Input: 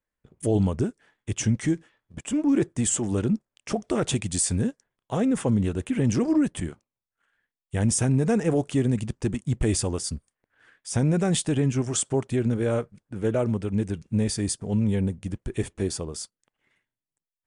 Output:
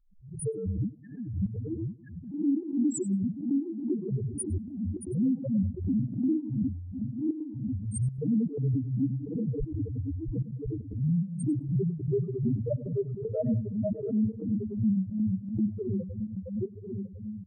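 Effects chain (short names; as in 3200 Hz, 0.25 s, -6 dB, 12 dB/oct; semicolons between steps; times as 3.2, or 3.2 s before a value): regenerating reverse delay 0.524 s, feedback 66%, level -4.5 dB; notches 50/100/150 Hz; loudest bins only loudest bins 1; in parallel at -1.5 dB: compressor, threshold -40 dBFS, peak gain reduction 17 dB; on the sum: limiter -26 dBFS, peak gain reduction 9 dB; bell 67 Hz -7 dB 1.4 oct; on a send: tape echo 0.101 s, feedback 28%, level -10.5 dB, low-pass 2300 Hz; on the sum: phaser stages 6, 2.9 Hz, lowest notch 190–1900 Hz; step gate "xxx.xxxxxxx." 154 bpm -12 dB; backwards sustainer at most 88 dB/s; gain +5 dB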